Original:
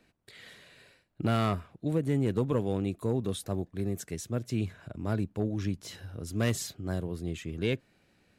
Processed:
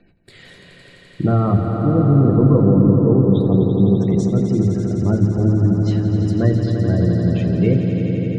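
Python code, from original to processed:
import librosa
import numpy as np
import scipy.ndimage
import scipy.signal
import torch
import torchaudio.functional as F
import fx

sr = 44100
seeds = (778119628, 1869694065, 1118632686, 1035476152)

y = fx.low_shelf(x, sr, hz=380.0, db=9.0)
y = fx.env_lowpass_down(y, sr, base_hz=1800.0, full_db=-18.5)
y = fx.room_shoebox(y, sr, seeds[0], volume_m3=160.0, walls='furnished', distance_m=0.8)
y = fx.spec_gate(y, sr, threshold_db=-30, keep='strong')
y = fx.echo_swell(y, sr, ms=85, loudest=5, wet_db=-9)
y = F.gain(torch.from_numpy(y), 5.0).numpy()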